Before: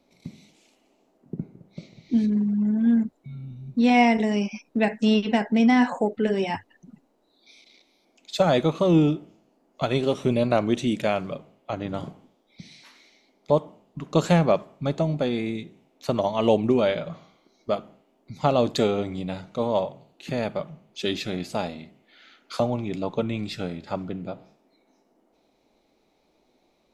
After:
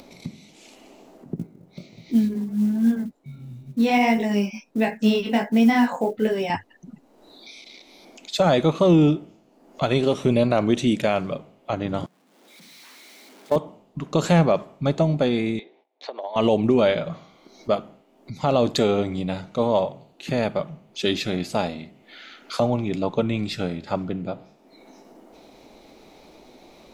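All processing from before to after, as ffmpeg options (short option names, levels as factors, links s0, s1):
-filter_complex "[0:a]asettb=1/sr,asplit=3[s0][s1][s2];[s0]atrim=end=1.364[s3];[s1]atrim=start=1.36:end=6.5,asetpts=PTS-STARTPTS,afade=t=in:d=0.004:c=qsin,afade=t=out:st=5.136:d=0.004:c=qsin,lowshelf=f=98:g=-4,flanger=delay=17:depth=5.4:speed=1.4,acrusher=bits=8:mode=log:mix=0:aa=0.000001[s4];[s2]atrim=start=6.496[s5];[s3][s4]acrossfade=d=0.004:c1=hsin:c2=qsin[s6];[s6][s5]acrossfade=d=0.004:c1=qsin:c2=hsin,asettb=1/sr,asplit=3[s7][s8][s9];[s7]atrim=end=12.064[s10];[s8]atrim=start=12.06:end=13.56,asetpts=PTS-STARTPTS,afade=t=in:d=0.004:c=qsin,afade=t=out:st=1.496:d=0.004:c=qsin,aeval=exprs='val(0)+0.5*0.0398*sgn(val(0))':c=same,highpass=f=190:w=0.5412,highpass=f=190:w=1.3066,agate=range=0.0251:threshold=0.1:ratio=16:release=100:detection=peak[s11];[s9]atrim=start=13.556[s12];[s10][s11]acrossfade=d=0.004:c1=hsin:c2=qsin[s13];[s13][s12]acrossfade=d=0.004:c1=qsin:c2=hsin,asettb=1/sr,asplit=3[s14][s15][s16];[s14]atrim=end=15.594[s17];[s15]atrim=start=15.59:end=16.36,asetpts=PTS-STARTPTS,afade=t=in:d=0.004:c=qsin,afade=t=out:st=0.766:d=0.004:c=qsin,agate=range=0.126:threshold=0.001:ratio=16:release=100:detection=peak,acompressor=threshold=0.0316:ratio=16:attack=3.2:release=140:knee=1:detection=peak,highpass=f=400:w=0.5412,highpass=f=400:w=1.3066,equalizer=f=800:t=q:w=4:g=4,equalizer=f=1300:t=q:w=4:g=-7,equalizer=f=2800:t=q:w=4:g=-6,lowpass=f=4000:w=0.5412,lowpass=f=4000:w=1.3066[s18];[s16]atrim=start=16.356[s19];[s17][s18]acrossfade=d=0.004:c1=hsin:c2=qsin[s20];[s20][s19]acrossfade=d=0.004:c1=qsin:c2=hsin,acompressor=mode=upward:threshold=0.01:ratio=2.5,alimiter=level_in=3.76:limit=0.891:release=50:level=0:latency=1,volume=0.422"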